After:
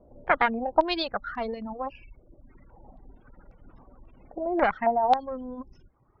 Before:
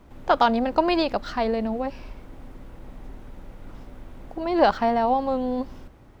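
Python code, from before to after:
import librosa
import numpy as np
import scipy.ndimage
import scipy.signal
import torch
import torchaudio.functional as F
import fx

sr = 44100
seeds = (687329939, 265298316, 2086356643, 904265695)

y = fx.dereverb_blind(x, sr, rt60_s=1.5)
y = fx.spec_gate(y, sr, threshold_db=-30, keep='strong')
y = fx.cheby_harmonics(y, sr, harmonics=(2,), levels_db=(-9,), full_scale_db=-6.0)
y = fx.filter_held_lowpass(y, sr, hz=3.7, low_hz=590.0, high_hz=5300.0)
y = y * librosa.db_to_amplitude(-7.0)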